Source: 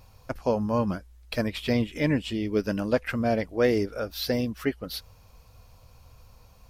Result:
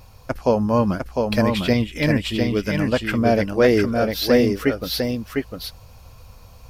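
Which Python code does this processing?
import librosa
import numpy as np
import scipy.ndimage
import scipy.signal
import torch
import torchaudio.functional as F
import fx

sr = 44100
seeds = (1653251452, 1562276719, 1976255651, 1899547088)

y = fx.peak_eq(x, sr, hz=460.0, db=-5.0, octaves=2.3, at=(1.73, 3.11))
y = y + 10.0 ** (-4.0 / 20.0) * np.pad(y, (int(703 * sr / 1000.0), 0))[:len(y)]
y = y * 10.0 ** (7.0 / 20.0)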